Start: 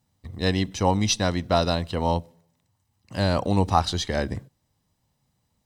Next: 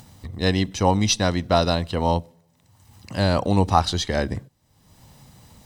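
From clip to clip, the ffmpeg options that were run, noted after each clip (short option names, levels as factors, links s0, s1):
-af "acompressor=mode=upward:threshold=0.02:ratio=2.5,volume=1.33"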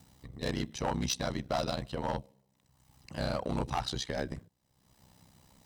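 -af "highpass=f=83:p=1,asoftclip=type=hard:threshold=0.158,aeval=exprs='val(0)*sin(2*PI*32*n/s)':c=same,volume=0.422"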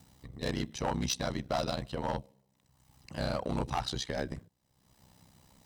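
-af anull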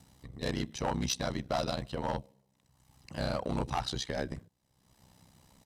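-af "aresample=32000,aresample=44100"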